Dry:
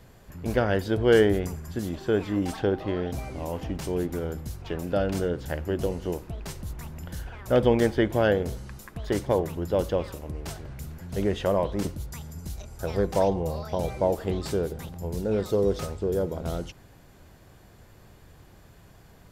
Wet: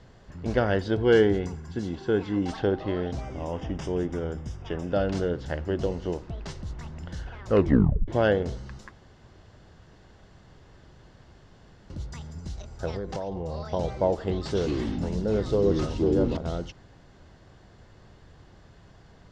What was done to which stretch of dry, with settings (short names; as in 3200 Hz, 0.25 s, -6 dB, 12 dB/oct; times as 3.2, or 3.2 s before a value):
0.96–2.49 notch comb 610 Hz
3.21–4.93 Butterworth band-stop 4200 Hz, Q 4.2
7.46 tape stop 0.62 s
8.92–11.9 room tone
12.9–13.6 compressor 10:1, threshold -28 dBFS
14.44–16.37 echoes that change speed 0.107 s, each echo -5 st, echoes 3
whole clip: LPF 6200 Hz 24 dB/oct; notch 2400 Hz, Q 12